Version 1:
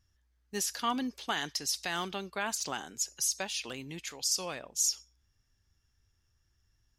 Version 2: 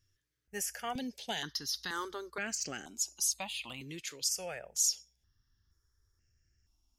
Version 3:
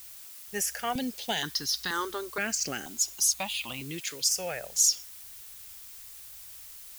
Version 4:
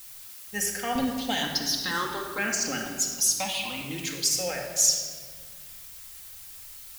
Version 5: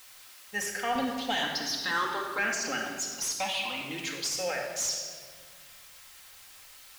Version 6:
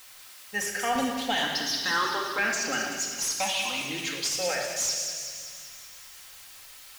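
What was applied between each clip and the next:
step phaser 2.1 Hz 210–3600 Hz
added noise blue -53 dBFS; gain +6.5 dB
reverb RT60 1.7 s, pre-delay 4 ms, DRR 0 dB
overdrive pedal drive 16 dB, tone 2400 Hz, clips at -8.5 dBFS; gain -6.5 dB
thin delay 0.19 s, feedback 61%, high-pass 2500 Hz, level -6 dB; gain +2.5 dB

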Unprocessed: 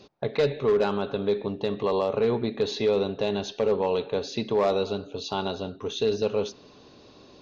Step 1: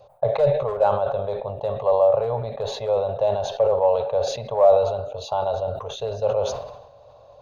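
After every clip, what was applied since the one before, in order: EQ curve 120 Hz 0 dB, 200 Hz -19 dB, 340 Hz -27 dB, 560 Hz +10 dB, 800 Hz +5 dB, 1900 Hz -13 dB, 3700 Hz -13 dB, 5500 Hz -18 dB, 8400 Hz 0 dB; sustainer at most 58 dB/s; gain +2 dB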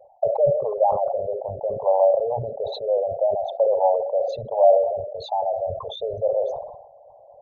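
formant sharpening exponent 3

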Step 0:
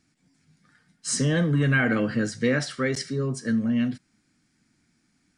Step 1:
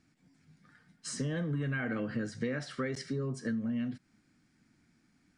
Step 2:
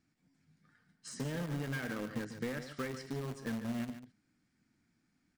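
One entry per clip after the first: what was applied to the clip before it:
compressor 5:1, threshold -32 dBFS, peak gain reduction 13 dB; high shelf 4100 Hz -9 dB
in parallel at -7 dB: bit-crush 5-bit; on the sum: echo 0.144 s -10.5 dB; gain -7.5 dB

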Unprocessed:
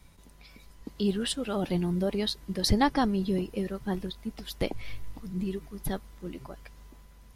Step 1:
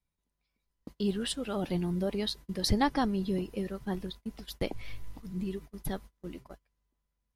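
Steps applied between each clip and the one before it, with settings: gate -41 dBFS, range -27 dB; gain -3 dB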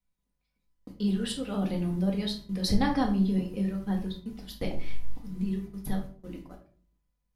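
shoebox room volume 400 m³, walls furnished, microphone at 1.9 m; gain -3 dB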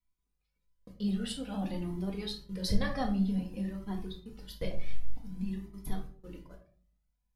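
cascading flanger rising 0.52 Hz

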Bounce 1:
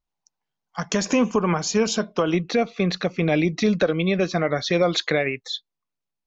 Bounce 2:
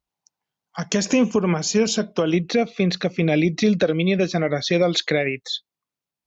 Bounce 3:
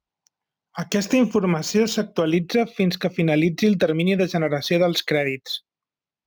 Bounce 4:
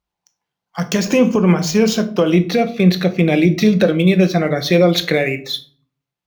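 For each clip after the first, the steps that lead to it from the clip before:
HPF 52 Hz; dynamic EQ 1100 Hz, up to -8 dB, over -40 dBFS, Q 1.3; gain +2.5 dB
median filter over 5 samples
shoebox room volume 400 m³, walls furnished, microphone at 0.84 m; gain +4 dB

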